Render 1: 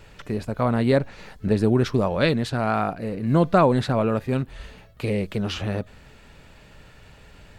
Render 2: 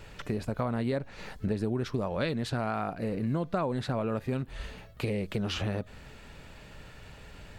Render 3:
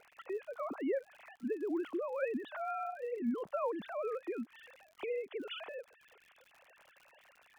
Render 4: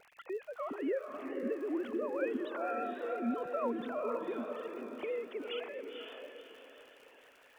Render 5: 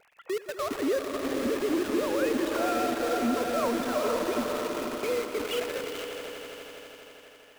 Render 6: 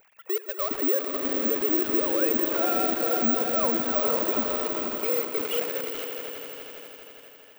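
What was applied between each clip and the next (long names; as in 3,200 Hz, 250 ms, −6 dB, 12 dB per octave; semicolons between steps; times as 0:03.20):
downward compressor 5 to 1, threshold −28 dBFS, peak gain reduction 13.5 dB
three sine waves on the formant tracks; surface crackle 73 per second −43 dBFS; level −7 dB
feedback delay with all-pass diffusion 502 ms, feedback 40%, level −4 dB; pitch vibrato 6.1 Hz 35 cents
in parallel at −5.5 dB: log-companded quantiser 2 bits; on the sum: echo that builds up and dies away 82 ms, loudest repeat 5, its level −13 dB
bad sample-rate conversion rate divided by 2×, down filtered, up zero stuff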